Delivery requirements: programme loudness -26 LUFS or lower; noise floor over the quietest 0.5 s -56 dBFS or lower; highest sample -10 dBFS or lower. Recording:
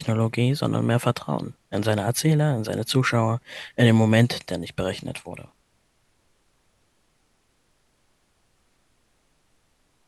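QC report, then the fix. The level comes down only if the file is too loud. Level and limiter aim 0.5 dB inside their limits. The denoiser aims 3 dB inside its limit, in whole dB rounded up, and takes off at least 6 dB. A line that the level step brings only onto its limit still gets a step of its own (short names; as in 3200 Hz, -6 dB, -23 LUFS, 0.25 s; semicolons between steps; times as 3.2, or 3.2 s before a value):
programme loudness -23.0 LUFS: fail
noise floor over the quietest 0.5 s -66 dBFS: OK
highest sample -5.5 dBFS: fail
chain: gain -3.5 dB; limiter -10.5 dBFS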